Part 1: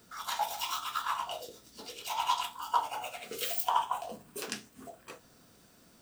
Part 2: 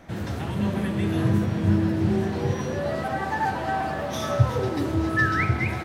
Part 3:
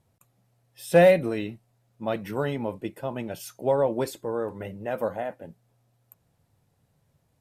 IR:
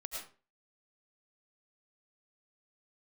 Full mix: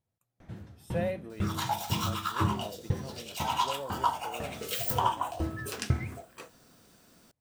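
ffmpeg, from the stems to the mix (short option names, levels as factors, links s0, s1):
-filter_complex "[0:a]adelay=1300,volume=1.12[s0];[1:a]lowshelf=f=210:g=9,aeval=exprs='val(0)*pow(10,-31*if(lt(mod(2*n/s,1),2*abs(2)/1000),1-mod(2*n/s,1)/(2*abs(2)/1000),(mod(2*n/s,1)-2*abs(2)/1000)/(1-2*abs(2)/1000))/20)':c=same,adelay=400,volume=0.398[s1];[2:a]volume=0.15[s2];[s0][s1][s2]amix=inputs=3:normalize=0"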